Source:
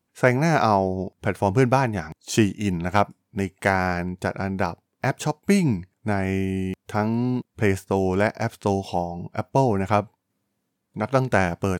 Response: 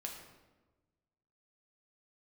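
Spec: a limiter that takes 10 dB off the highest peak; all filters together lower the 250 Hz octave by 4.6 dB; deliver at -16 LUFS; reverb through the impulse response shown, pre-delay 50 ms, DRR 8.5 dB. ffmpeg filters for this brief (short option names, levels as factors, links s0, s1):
-filter_complex "[0:a]equalizer=f=250:t=o:g=-6.5,alimiter=limit=0.168:level=0:latency=1,asplit=2[s0][s1];[1:a]atrim=start_sample=2205,adelay=50[s2];[s1][s2]afir=irnorm=-1:irlink=0,volume=0.447[s3];[s0][s3]amix=inputs=2:normalize=0,volume=4.22"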